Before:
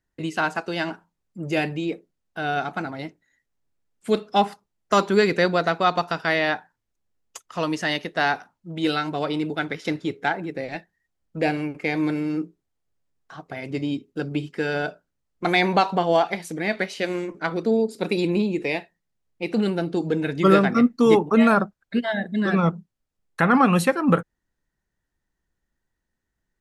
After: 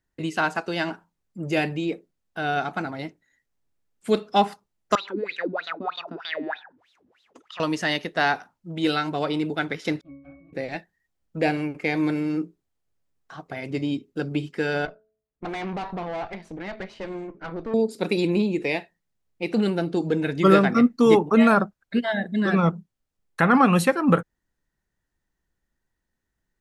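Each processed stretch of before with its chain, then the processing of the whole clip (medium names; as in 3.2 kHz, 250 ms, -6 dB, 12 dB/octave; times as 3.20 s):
4.95–7.60 s: wah-wah 3.2 Hz 250–3900 Hz, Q 9.5 + level flattener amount 50%
10.01–10.53 s: comb filter that takes the minimum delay 4 ms + low-pass that closes with the level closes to 2.2 kHz, closed at -22 dBFS + pitch-class resonator C#, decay 0.63 s
14.85–17.74 s: valve stage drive 26 dB, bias 0.75 + tape spacing loss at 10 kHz 21 dB + de-hum 216.9 Hz, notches 3
whole clip: none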